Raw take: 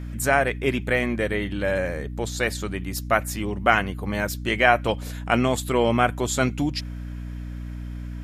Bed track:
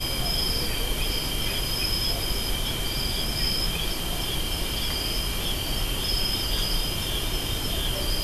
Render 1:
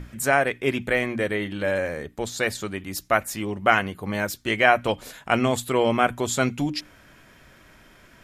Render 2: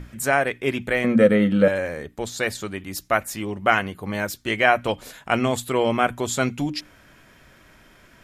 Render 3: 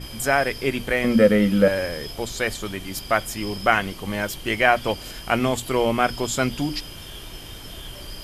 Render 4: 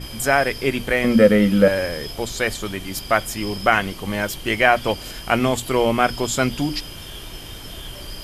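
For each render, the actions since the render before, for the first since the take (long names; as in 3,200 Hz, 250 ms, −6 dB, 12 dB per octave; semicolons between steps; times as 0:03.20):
mains-hum notches 60/120/180/240/300 Hz
0:01.04–0:01.68: hollow resonant body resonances 210/500/1,300 Hz, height 16 dB
mix in bed track −10.5 dB
level +2.5 dB; brickwall limiter −1 dBFS, peak gain reduction 2 dB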